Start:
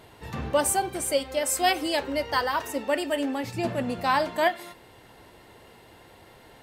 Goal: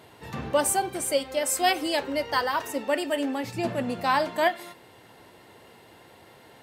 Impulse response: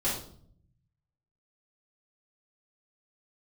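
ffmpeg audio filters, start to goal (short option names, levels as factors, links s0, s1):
-af "highpass=100"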